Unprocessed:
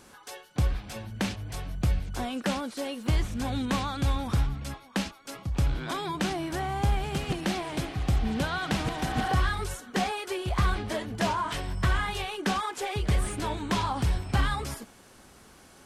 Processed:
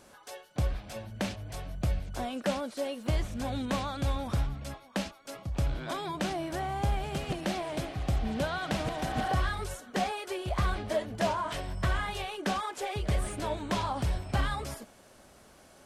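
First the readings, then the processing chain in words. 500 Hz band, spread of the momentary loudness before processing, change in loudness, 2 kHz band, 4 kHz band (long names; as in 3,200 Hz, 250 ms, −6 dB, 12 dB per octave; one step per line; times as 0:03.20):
+0.5 dB, 6 LU, −3.0 dB, −4.0 dB, −4.0 dB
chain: parametric band 610 Hz +9.5 dB 0.36 octaves
level −4 dB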